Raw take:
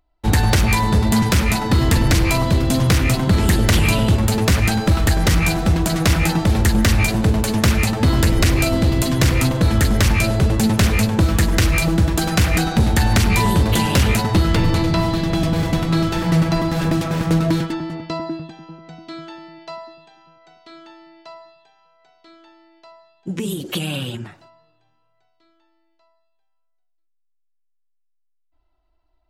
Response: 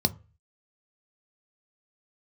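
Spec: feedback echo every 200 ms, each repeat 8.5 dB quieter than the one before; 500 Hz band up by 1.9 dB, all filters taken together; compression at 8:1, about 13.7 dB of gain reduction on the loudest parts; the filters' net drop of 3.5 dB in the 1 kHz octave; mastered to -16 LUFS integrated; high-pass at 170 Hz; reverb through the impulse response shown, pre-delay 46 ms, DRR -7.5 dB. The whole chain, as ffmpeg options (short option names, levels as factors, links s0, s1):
-filter_complex "[0:a]highpass=170,equalizer=f=500:t=o:g=4.5,equalizer=f=1000:t=o:g=-6,acompressor=threshold=0.0355:ratio=8,aecho=1:1:200|400|600|800:0.376|0.143|0.0543|0.0206,asplit=2[s0][s1];[1:a]atrim=start_sample=2205,adelay=46[s2];[s1][s2]afir=irnorm=-1:irlink=0,volume=0.841[s3];[s0][s3]amix=inputs=2:normalize=0,volume=1.06"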